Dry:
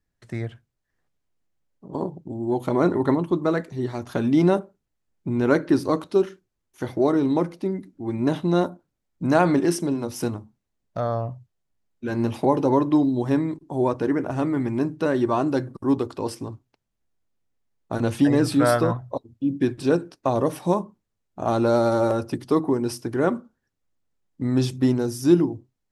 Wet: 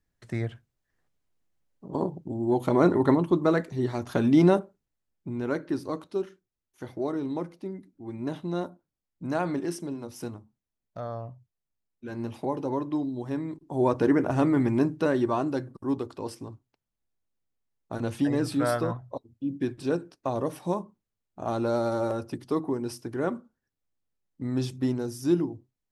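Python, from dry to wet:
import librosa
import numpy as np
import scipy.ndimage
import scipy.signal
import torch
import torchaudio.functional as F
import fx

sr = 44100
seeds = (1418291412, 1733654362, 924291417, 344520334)

y = fx.gain(x, sr, db=fx.line((4.44, -0.5), (5.5, -10.0), (13.34, -10.0), (14.0, 1.0), (14.71, 1.0), (15.65, -7.0)))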